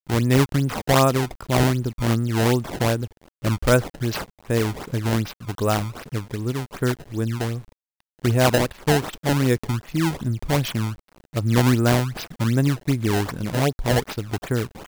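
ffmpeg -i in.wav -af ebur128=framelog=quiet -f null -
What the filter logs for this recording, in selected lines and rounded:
Integrated loudness:
  I:         -22.6 LUFS
  Threshold: -32.8 LUFS
Loudness range:
  LRA:         4.3 LU
  Threshold: -43.1 LUFS
  LRA low:   -25.9 LUFS
  LRA high:  -21.7 LUFS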